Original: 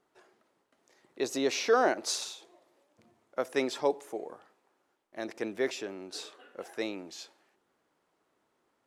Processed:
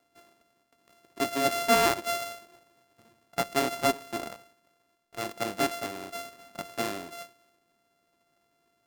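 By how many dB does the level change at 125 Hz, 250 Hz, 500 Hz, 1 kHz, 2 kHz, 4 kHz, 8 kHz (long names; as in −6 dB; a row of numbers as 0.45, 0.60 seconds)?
+10.5, +2.0, 0.0, +6.0, +4.0, +3.5, +3.0 decibels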